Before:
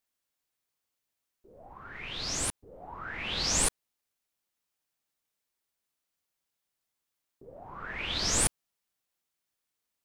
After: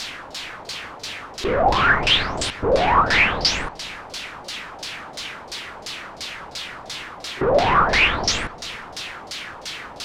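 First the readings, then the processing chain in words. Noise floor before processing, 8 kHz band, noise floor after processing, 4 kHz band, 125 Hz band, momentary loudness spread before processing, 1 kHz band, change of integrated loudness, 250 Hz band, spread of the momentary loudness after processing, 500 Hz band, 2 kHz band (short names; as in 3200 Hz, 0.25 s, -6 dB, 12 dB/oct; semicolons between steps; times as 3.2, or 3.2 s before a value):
-85 dBFS, -0.5 dB, -39 dBFS, +13.0 dB, +13.0 dB, 20 LU, +22.5 dB, +9.0 dB, +14.5 dB, 16 LU, +22.0 dB, +19.5 dB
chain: power-law curve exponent 0.35; high shelf 5100 Hz +5.5 dB; in parallel at +3 dB: compressor, threshold -28 dBFS, peak gain reduction 14.5 dB; on the sum: limiter -15 dBFS, peak gain reduction 10 dB; on a send: multi-head echo 99 ms, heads all three, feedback 56%, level -22.5 dB; on the sum: LFO low-pass saw down 2.9 Hz 590–5100 Hz; pre-echo 40 ms -20 dB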